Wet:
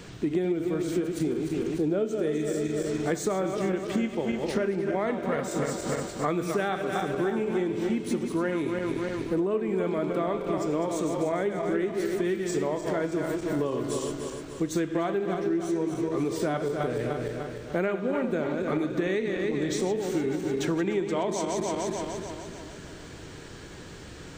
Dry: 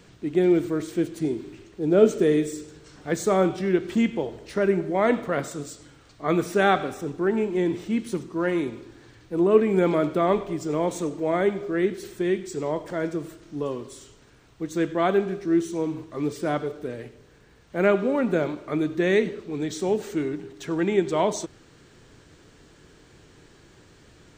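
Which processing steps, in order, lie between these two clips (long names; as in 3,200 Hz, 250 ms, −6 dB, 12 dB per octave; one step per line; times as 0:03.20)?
feedback delay that plays each chunk backwards 149 ms, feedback 68%, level −7 dB
downward compressor 12 to 1, threshold −32 dBFS, peak gain reduction 22 dB
level +8 dB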